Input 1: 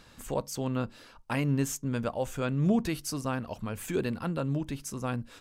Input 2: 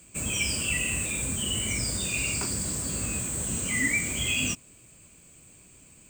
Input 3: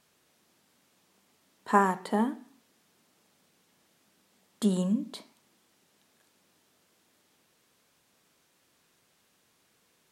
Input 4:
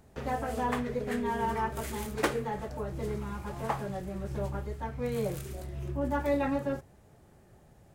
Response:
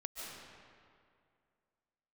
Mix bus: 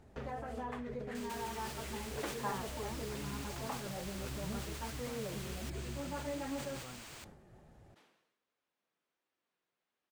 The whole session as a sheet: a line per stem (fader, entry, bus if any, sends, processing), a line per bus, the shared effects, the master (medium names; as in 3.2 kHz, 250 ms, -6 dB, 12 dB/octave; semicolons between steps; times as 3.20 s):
-15.5 dB, 1.80 s, no send, none
-1.5 dB, 1.15 s, no send, compression, threshold -33 dBFS, peak gain reduction 11 dB; spectrum-flattening compressor 10:1
-12.5 dB, 0.70 s, no send, tone controls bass -9 dB, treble -7 dB
+2.0 dB, 0.00 s, no send, compression 4:1, threshold -38 dBFS, peak gain reduction 13.5 dB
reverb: none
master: treble shelf 7.9 kHz -12 dB; flange 1.4 Hz, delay 2.2 ms, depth 4.4 ms, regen -59%; decay stretcher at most 62 dB/s